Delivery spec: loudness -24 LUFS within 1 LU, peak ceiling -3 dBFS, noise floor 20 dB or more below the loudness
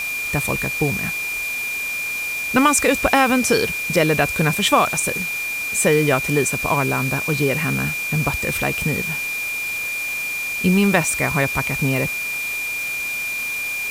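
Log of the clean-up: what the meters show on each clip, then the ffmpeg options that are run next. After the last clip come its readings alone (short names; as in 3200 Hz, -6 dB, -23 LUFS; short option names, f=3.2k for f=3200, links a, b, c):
steady tone 2400 Hz; tone level -23 dBFS; noise floor -26 dBFS; noise floor target -40 dBFS; loudness -19.5 LUFS; peak -1.0 dBFS; loudness target -24.0 LUFS
-> -af "bandreject=f=2.4k:w=30"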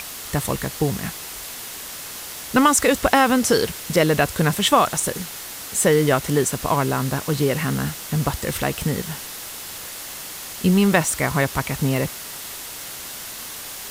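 steady tone none; noise floor -35 dBFS; noise floor target -42 dBFS
-> -af "afftdn=nr=7:nf=-35"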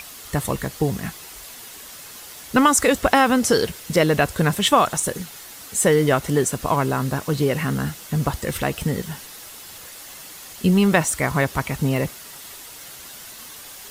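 noise floor -40 dBFS; noise floor target -41 dBFS
-> -af "afftdn=nr=6:nf=-40"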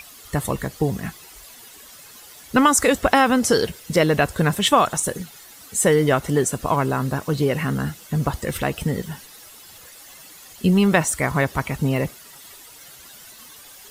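noise floor -45 dBFS; loudness -20.5 LUFS; peak -1.5 dBFS; loudness target -24.0 LUFS
-> -af "volume=-3.5dB"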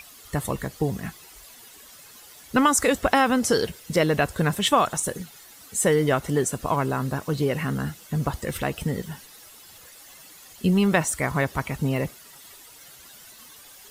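loudness -24.0 LUFS; peak -5.0 dBFS; noise floor -48 dBFS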